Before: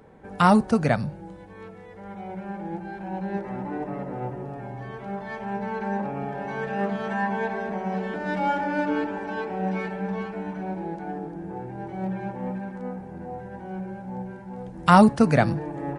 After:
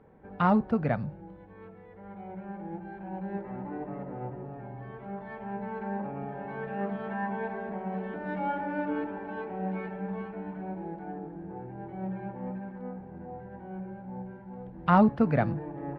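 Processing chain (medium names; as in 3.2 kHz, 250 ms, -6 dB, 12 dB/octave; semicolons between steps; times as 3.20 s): distance through air 430 m; trim -5 dB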